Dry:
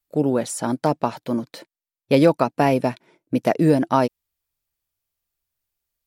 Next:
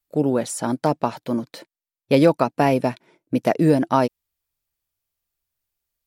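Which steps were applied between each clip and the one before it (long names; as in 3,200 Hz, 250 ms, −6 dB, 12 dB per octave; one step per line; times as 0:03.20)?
no processing that can be heard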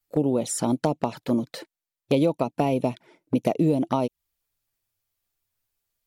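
downward compressor 4 to 1, threshold −23 dBFS, peak gain reduction 11.5 dB
flanger swept by the level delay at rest 9.4 ms, full sweep at −24.5 dBFS
level +4.5 dB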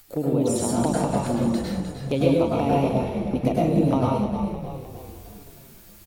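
upward compression, threshold −28 dBFS
echo with shifted repeats 307 ms, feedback 56%, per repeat −52 Hz, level −8 dB
convolution reverb RT60 0.70 s, pre-delay 92 ms, DRR −4.5 dB
level −4 dB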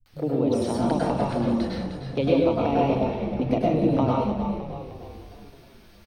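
bit reduction 10 bits
Savitzky-Golay smoothing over 15 samples
multiband delay without the direct sound lows, highs 60 ms, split 150 Hz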